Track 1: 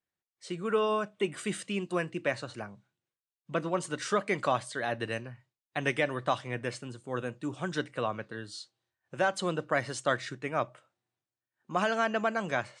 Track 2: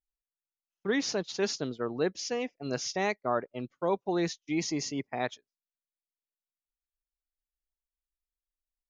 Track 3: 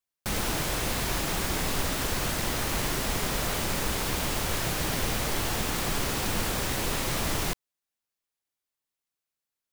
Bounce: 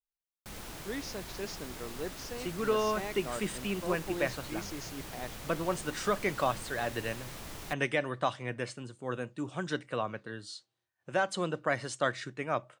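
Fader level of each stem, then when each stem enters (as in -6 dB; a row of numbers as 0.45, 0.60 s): -1.5, -10.0, -15.5 dB; 1.95, 0.00, 0.20 s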